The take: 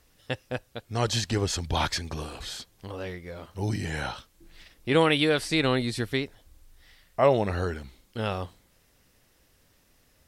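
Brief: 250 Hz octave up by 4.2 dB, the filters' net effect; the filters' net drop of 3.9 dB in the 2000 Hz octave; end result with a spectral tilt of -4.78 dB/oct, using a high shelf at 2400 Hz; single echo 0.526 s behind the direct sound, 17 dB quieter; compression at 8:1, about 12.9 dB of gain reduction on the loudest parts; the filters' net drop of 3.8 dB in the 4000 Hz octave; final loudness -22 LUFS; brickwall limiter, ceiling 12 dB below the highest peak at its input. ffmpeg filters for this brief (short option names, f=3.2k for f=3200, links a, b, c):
-af "equalizer=f=250:t=o:g=5.5,equalizer=f=2k:t=o:g=-5.5,highshelf=f=2.4k:g=4.5,equalizer=f=4k:t=o:g=-7,acompressor=threshold=-27dB:ratio=8,alimiter=level_in=4dB:limit=-24dB:level=0:latency=1,volume=-4dB,aecho=1:1:526:0.141,volume=17dB"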